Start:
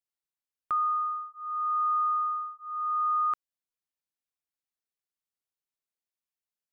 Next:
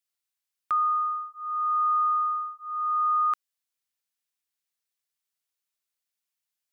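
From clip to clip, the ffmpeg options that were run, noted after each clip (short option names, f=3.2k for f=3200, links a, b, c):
-af "tiltshelf=f=970:g=-6,volume=1.5dB"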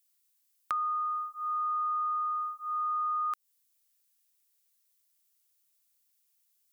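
-af "acompressor=threshold=-31dB:ratio=6,crystalizer=i=2.5:c=0"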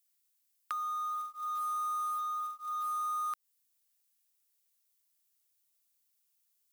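-filter_complex "[0:a]acrossover=split=1000[a][b];[a]alimiter=level_in=16.5dB:limit=-24dB:level=0:latency=1:release=422,volume=-16.5dB[c];[c][b]amix=inputs=2:normalize=0,acrusher=bits=4:mode=log:mix=0:aa=0.000001,volume=-3dB"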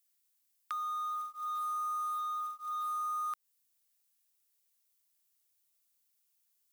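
-af "asoftclip=type=tanh:threshold=-28dB"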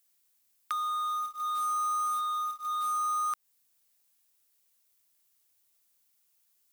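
-af "acrusher=bits=3:mode=log:mix=0:aa=0.000001,volume=5dB"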